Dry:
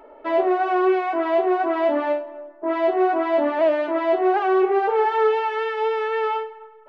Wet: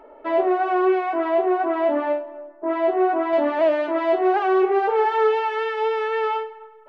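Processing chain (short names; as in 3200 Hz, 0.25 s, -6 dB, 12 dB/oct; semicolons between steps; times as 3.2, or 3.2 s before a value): high shelf 4100 Hz -6.5 dB, from 1.29 s -11.5 dB, from 3.33 s +2 dB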